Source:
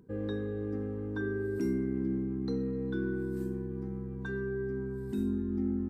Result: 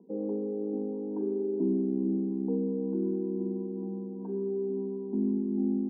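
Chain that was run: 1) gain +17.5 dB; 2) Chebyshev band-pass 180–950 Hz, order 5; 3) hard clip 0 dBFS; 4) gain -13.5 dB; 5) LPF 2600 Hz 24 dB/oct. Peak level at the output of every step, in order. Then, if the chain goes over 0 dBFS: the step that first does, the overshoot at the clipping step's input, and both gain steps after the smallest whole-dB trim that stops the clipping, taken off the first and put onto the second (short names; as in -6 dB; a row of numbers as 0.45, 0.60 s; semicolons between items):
-4.5, -5.0, -5.0, -18.5, -18.5 dBFS; no overload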